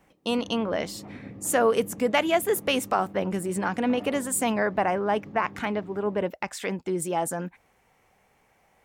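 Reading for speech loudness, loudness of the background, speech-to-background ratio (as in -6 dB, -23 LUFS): -26.5 LUFS, -44.0 LUFS, 17.5 dB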